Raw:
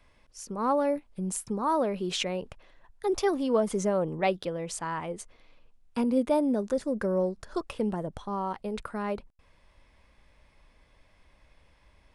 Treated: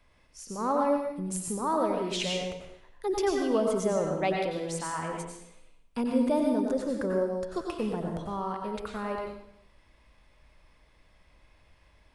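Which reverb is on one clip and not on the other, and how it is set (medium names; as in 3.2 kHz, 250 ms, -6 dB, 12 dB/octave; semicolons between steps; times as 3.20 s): plate-style reverb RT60 0.73 s, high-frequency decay 1×, pre-delay 80 ms, DRR 0.5 dB; trim -2.5 dB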